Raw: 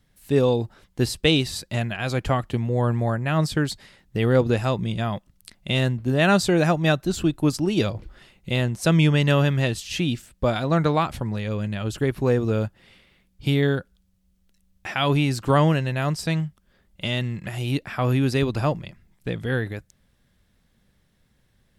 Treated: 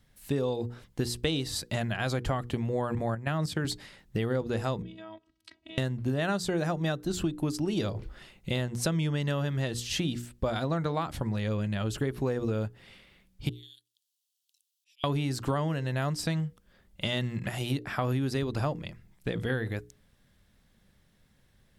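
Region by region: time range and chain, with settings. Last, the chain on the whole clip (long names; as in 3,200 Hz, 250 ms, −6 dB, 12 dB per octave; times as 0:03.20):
0:02.95–0:03.65: high-pass filter 86 Hz 24 dB per octave + output level in coarse steps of 12 dB
0:04.82–0:05.78: downward compressor 8 to 1, threshold −36 dBFS + phases set to zero 323 Hz + band-pass filter 100–4,100 Hz
0:13.49–0:15.04: Butterworth high-pass 2,900 Hz 48 dB per octave + volume swells 625 ms
whole clip: mains-hum notches 60/120/180/240/300/360/420/480 Hz; dynamic equaliser 2,500 Hz, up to −6 dB, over −44 dBFS, Q 4.4; downward compressor, threshold −26 dBFS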